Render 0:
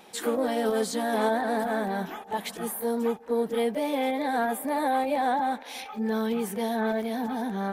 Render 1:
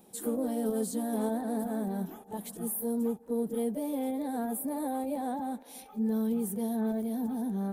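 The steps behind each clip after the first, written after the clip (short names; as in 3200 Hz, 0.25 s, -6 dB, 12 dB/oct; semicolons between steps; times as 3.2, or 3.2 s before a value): EQ curve 220 Hz 0 dB, 2100 Hz -20 dB, 5800 Hz -11 dB, 9600 Hz +1 dB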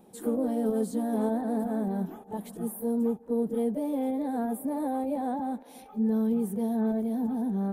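high shelf 2700 Hz -11 dB; gain +3.5 dB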